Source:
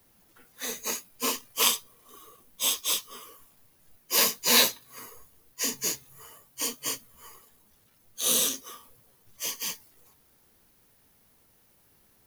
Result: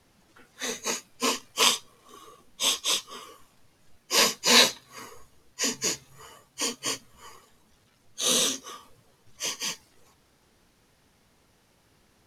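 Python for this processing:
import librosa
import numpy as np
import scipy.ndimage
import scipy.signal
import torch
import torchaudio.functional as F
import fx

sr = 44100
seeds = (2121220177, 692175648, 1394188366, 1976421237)

y = scipy.signal.sosfilt(scipy.signal.butter(2, 7000.0, 'lowpass', fs=sr, output='sos'), x)
y = F.gain(torch.from_numpy(y), 4.0).numpy()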